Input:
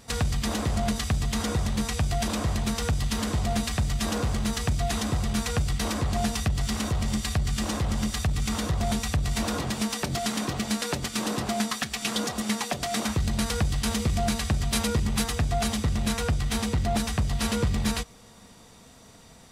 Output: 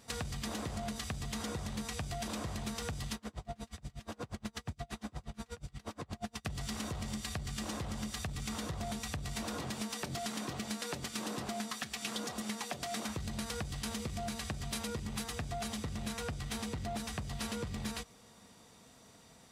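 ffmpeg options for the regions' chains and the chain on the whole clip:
-filter_complex "[0:a]asettb=1/sr,asplit=3[s0][s1][s2];[s0]atrim=end=3.154[s3];[s1]atrim=start=3.15:end=6.45,asetpts=PTS-STARTPTS,afade=t=in:d=0.004:c=qsin,afade=t=out:st=3.296:d=0.004:c=qsin,highshelf=f=4100:g=-7,aeval=exprs='val(0)*pow(10,-34*(0.5-0.5*cos(2*PI*8.4*n/s))/20)':c=same[s4];[s2]atrim=start=6.446[s5];[s3][s4]acrossfade=d=0.004:c1=hsin:c2=qsin[s6];[s6][s5]acrossfade=d=0.004:c1=qsin:c2=hsin,highpass=f=100:p=1,acompressor=threshold=0.0398:ratio=6,volume=0.447"

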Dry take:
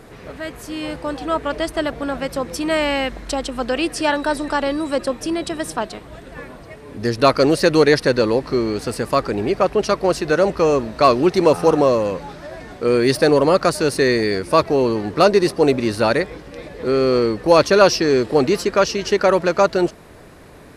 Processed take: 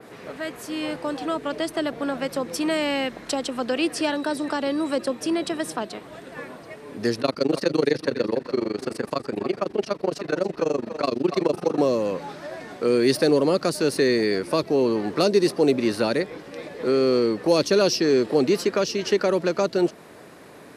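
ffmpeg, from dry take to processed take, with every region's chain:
-filter_complex "[0:a]asettb=1/sr,asplit=3[s0][s1][s2];[s0]atrim=end=7.214[s3];[s1]atrim=start=7.21:end=11.78,asetpts=PTS-STARTPTS,afade=t=in:d=0.004:c=qsin,afade=t=out:st=4.566:d=0.004:c=qsin,tremolo=f=24:d=0.974,highshelf=f=7800:g=-8.5,aecho=1:1:284:0.2,atrim=end_sample=201537[s4];[s2]atrim=start=11.776[s5];[s3][s4]acrossfade=d=0.004:c1=hsin:c2=qsin[s6];[s6][s5]acrossfade=d=0.004:c1=qsin:c2=hsin,highpass=180,adynamicequalizer=threshold=0.00794:dfrequency=7800:dqfactor=0.72:tfrequency=7800:tqfactor=0.72:attack=5:release=100:ratio=0.375:range=2:mode=cutabove:tftype=bell,acrossover=split=450|3000[s7][s8][s9];[s8]acompressor=threshold=0.0501:ratio=6[s10];[s7][s10][s9]amix=inputs=3:normalize=0,volume=0.891"

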